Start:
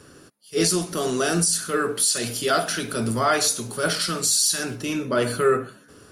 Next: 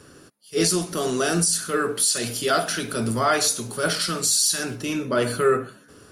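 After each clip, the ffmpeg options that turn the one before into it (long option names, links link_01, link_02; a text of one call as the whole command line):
ffmpeg -i in.wav -af anull out.wav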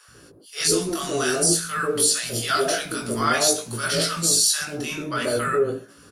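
ffmpeg -i in.wav -filter_complex "[0:a]flanger=delay=17.5:depth=3.9:speed=0.51,acrossover=split=210|790[link_01][link_02][link_03];[link_01]adelay=80[link_04];[link_02]adelay=140[link_05];[link_04][link_05][link_03]amix=inputs=3:normalize=0,volume=4.5dB" out.wav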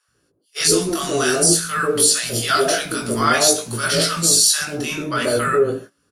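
ffmpeg -i in.wav -af "agate=range=-21dB:threshold=-39dB:ratio=16:detection=peak,volume=4.5dB" out.wav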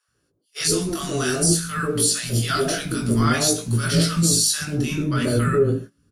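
ffmpeg -i in.wav -af "asubboost=boost=7:cutoff=250,volume=-5dB" out.wav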